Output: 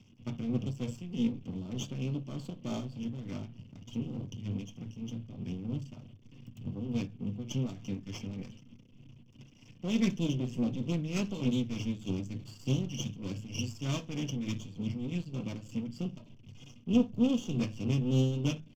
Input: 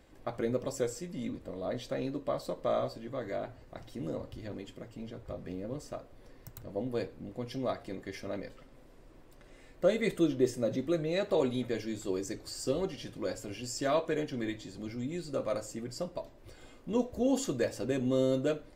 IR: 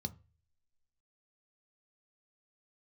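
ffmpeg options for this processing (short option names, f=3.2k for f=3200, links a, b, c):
-filter_complex "[0:a]firequalizer=gain_entry='entry(220,0);entry(340,-14);entry(1200,-15);entry(2900,13);entry(5100,-13)':delay=0.05:min_phase=1,aeval=exprs='max(val(0),0)':c=same,tremolo=f=3.3:d=0.58[a];[1:a]atrim=start_sample=2205,asetrate=57330,aresample=44100[b];[a][b]afir=irnorm=-1:irlink=0,volume=7.5dB"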